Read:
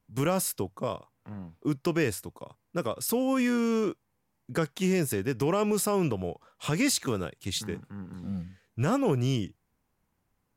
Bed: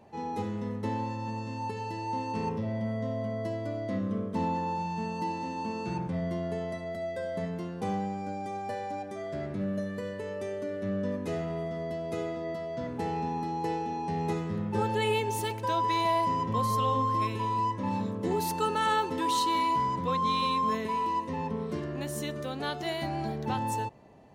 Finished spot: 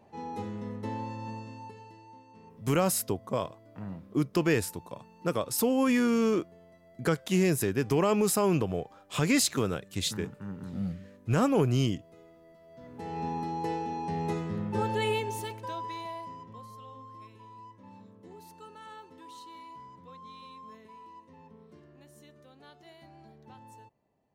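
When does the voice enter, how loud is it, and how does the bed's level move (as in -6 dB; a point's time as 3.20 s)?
2.50 s, +1.0 dB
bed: 1.31 s -3.5 dB
2.25 s -21.5 dB
12.58 s -21.5 dB
13.25 s -1 dB
15.08 s -1 dB
16.75 s -20.5 dB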